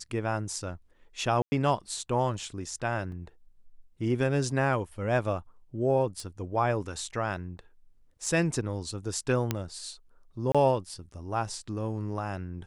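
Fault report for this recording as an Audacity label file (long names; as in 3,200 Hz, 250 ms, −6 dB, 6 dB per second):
1.420000	1.520000	drop-out 100 ms
3.120000	3.120000	drop-out 2.3 ms
6.200000	6.200000	click −25 dBFS
8.260000	8.260000	drop-out 3.1 ms
9.510000	9.510000	click −12 dBFS
10.520000	10.550000	drop-out 26 ms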